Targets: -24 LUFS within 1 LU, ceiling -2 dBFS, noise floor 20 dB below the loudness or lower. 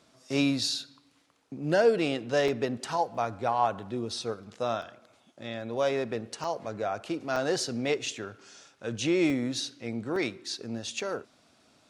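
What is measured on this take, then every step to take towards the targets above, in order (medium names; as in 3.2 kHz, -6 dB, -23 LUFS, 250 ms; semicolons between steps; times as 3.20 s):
dropouts 8; longest dropout 2.7 ms; loudness -30.0 LUFS; peak level -11.5 dBFS; loudness target -24.0 LUFS
-> interpolate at 2.48/3.15/4.82/6.44/7.36/9.30/10.16/11.00 s, 2.7 ms; trim +6 dB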